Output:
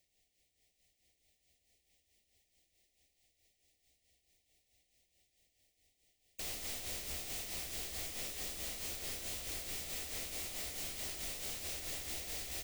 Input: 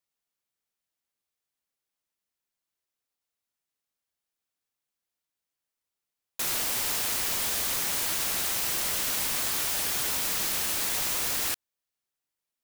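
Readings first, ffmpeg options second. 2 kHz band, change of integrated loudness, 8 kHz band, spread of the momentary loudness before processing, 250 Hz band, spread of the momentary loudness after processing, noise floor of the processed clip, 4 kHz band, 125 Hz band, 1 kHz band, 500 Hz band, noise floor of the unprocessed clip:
−13.5 dB, −14.0 dB, −13.5 dB, 2 LU, −10.0 dB, 0 LU, −80 dBFS, −12.5 dB, −6.0 dB, −16.5 dB, −9.5 dB, below −85 dBFS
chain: -filter_complex "[0:a]asplit=2[link_01][link_02];[link_02]aecho=0:1:620|1054|1358|1570|1719:0.631|0.398|0.251|0.158|0.1[link_03];[link_01][link_03]amix=inputs=2:normalize=0,afftfilt=real='re*lt(hypot(re,im),0.0398)':imag='im*lt(hypot(re,im),0.0398)':win_size=1024:overlap=0.75,asuperstop=centerf=1200:order=20:qfactor=1.2,lowshelf=frequency=100:width_type=q:width=1.5:gain=8,bandreject=frequency=50:width_type=h:width=6,bandreject=frequency=100:width_type=h:width=6,bandreject=frequency=150:width_type=h:width=6,bandreject=frequency=200:width_type=h:width=6,bandreject=frequency=250:width_type=h:width=6,asplit=2[link_04][link_05];[link_05]adynamicsmooth=sensitivity=5.5:basefreq=500,volume=-6.5dB[link_06];[link_04][link_06]amix=inputs=2:normalize=0,equalizer=frequency=13000:width_type=o:width=0.39:gain=-12,aeval=exprs='(tanh(178*val(0)+0.2)-tanh(0.2))/178':channel_layout=same,tremolo=f=4.6:d=0.58,acompressor=threshold=-56dB:ratio=6,volume=14.5dB"

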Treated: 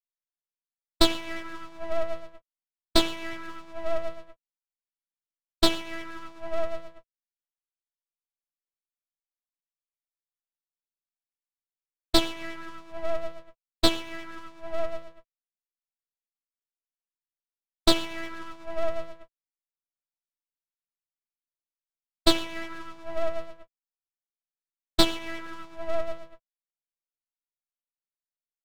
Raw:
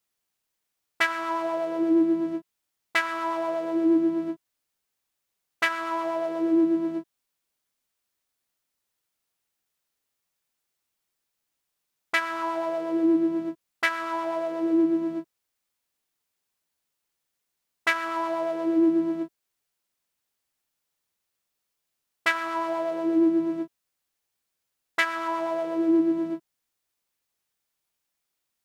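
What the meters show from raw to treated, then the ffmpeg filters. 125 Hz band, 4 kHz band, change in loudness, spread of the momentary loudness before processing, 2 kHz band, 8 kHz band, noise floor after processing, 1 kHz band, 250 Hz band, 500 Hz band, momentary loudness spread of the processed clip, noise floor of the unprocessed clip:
+7.5 dB, +10.0 dB, −3.5 dB, 10 LU, −9.0 dB, can't be measured, below −85 dBFS, −6.0 dB, −10.0 dB, −3.5 dB, 17 LU, −82 dBFS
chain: -af "equalizer=frequency=2400:width=0.86:gain=9.5,agate=range=-33dB:threshold=-18dB:ratio=3:detection=peak,aeval=exprs='abs(val(0))':channel_layout=same,volume=-1.5dB"

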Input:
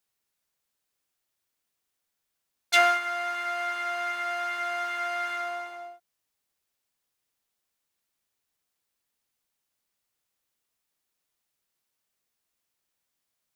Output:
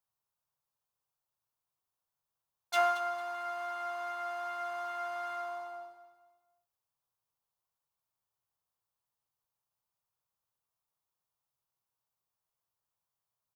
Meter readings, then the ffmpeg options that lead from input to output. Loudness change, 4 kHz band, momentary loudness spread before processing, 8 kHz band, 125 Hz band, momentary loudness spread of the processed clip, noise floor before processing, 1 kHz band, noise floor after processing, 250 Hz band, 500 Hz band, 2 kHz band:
−8.0 dB, −12.5 dB, 14 LU, −11.5 dB, can't be measured, 12 LU, −82 dBFS, −6.0 dB, below −85 dBFS, −9.0 dB, −4.0 dB, −12.5 dB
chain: -af "equalizer=frequency=125:width_type=o:width=1:gain=10,equalizer=frequency=250:width_type=o:width=1:gain=-9,equalizer=frequency=1000:width_type=o:width=1:gain=9,equalizer=frequency=2000:width_type=o:width=1:gain=-9,equalizer=frequency=4000:width_type=o:width=1:gain=-3,equalizer=frequency=8000:width_type=o:width=1:gain=-4,aecho=1:1:226|452|678:0.237|0.0806|0.0274,volume=-7.5dB"

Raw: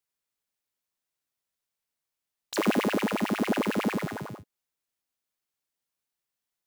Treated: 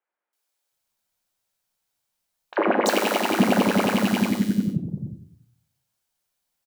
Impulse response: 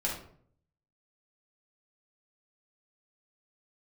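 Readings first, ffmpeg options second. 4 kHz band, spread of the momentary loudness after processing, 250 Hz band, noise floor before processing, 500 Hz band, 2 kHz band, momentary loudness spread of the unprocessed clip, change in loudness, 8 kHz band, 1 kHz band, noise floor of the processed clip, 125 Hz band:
+8.0 dB, 11 LU, +7.0 dB, below −85 dBFS, +7.5 dB, +6.5 dB, 13 LU, +6.0 dB, +8.5 dB, +9.0 dB, below −85 dBFS, +9.0 dB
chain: -filter_complex "[0:a]acrossover=split=290|2100[link_01][link_02][link_03];[link_03]adelay=330[link_04];[link_01]adelay=720[link_05];[link_05][link_02][link_04]amix=inputs=3:normalize=0,asplit=2[link_06][link_07];[1:a]atrim=start_sample=2205[link_08];[link_07][link_08]afir=irnorm=-1:irlink=0,volume=-8dB[link_09];[link_06][link_09]amix=inputs=2:normalize=0,volume=5.5dB"

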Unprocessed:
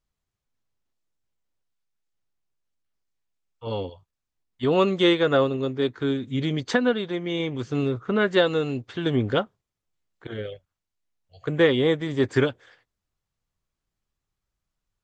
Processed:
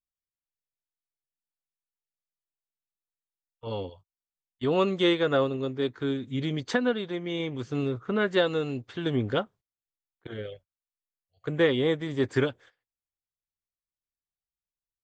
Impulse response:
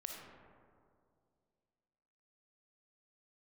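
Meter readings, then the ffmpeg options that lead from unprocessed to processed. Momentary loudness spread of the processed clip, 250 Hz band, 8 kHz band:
15 LU, −4.0 dB, can't be measured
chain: -af "agate=range=-17dB:threshold=-46dB:ratio=16:detection=peak,volume=-4dB"

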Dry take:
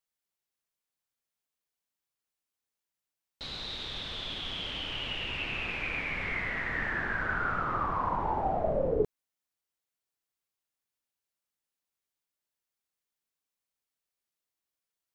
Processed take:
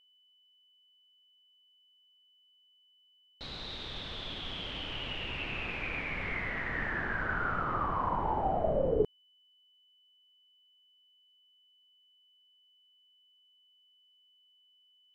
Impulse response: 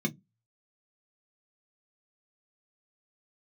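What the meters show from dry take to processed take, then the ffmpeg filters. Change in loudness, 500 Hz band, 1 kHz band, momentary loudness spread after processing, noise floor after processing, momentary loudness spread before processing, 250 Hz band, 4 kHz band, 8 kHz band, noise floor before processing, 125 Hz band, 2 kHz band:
−2.0 dB, −0.5 dB, −1.5 dB, 9 LU, −67 dBFS, 6 LU, 0.0 dB, −3.5 dB, can't be measured, below −85 dBFS, 0.0 dB, −2.5 dB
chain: -af "equalizer=frequency=4300:width_type=o:width=2.3:gain=4,aeval=exprs='val(0)+0.00141*sin(2*PI*3000*n/s)':channel_layout=same,highshelf=frequency=2100:gain=-10.5"

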